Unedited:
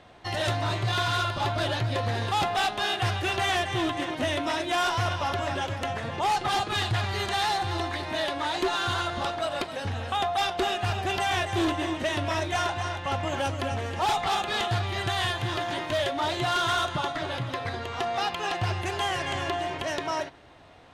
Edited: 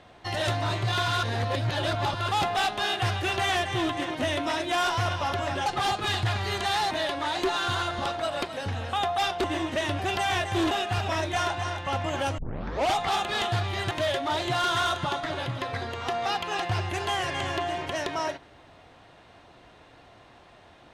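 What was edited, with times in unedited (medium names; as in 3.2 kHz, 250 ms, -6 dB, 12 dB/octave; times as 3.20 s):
1.23–2.28 s: reverse
5.66–6.34 s: delete
7.59–8.10 s: delete
10.63–11.00 s: swap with 11.72–12.27 s
13.57 s: tape start 0.58 s
15.10–15.83 s: delete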